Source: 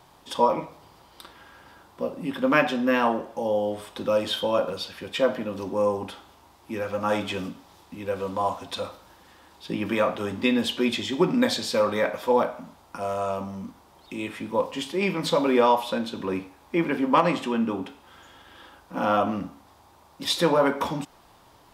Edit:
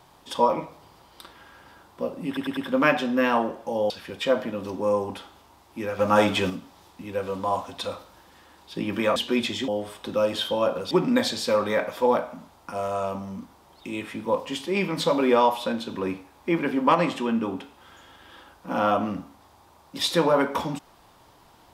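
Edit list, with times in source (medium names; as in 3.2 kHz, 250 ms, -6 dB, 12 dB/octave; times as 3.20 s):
2.27 s: stutter 0.10 s, 4 plays
3.60–4.83 s: move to 11.17 s
6.92–7.43 s: gain +6 dB
10.09–10.65 s: delete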